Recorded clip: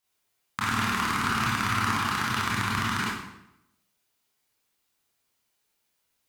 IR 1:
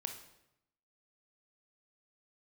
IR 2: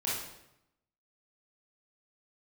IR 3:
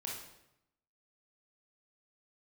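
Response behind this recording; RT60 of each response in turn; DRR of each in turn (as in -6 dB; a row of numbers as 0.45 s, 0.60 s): 2; 0.85 s, 0.85 s, 0.85 s; 5.0 dB, -7.5 dB, -3.0 dB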